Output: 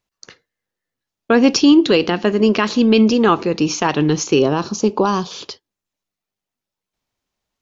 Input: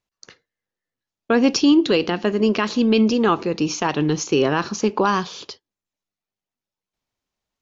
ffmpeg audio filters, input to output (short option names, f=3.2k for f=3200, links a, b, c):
-filter_complex "[0:a]asettb=1/sr,asplit=3[a][b][c];[a]atrim=end=4.394[d];[b]atrim=start=4.39:end=5.31,asetpts=PTS-STARTPTS,afade=t=in:d=0.004:c=qsin,afade=t=out:st=0.916:d=0.004:c=qsin,equalizer=f=1.9k:t=o:w=1.1:g=-12.5[e];[c]atrim=start=5.306[f];[d][e]acrossfade=d=0.004:c1=hsin:c2=qsin[g];[g][f]acrossfade=d=0.004:c1=qsin:c2=hsin,volume=4dB"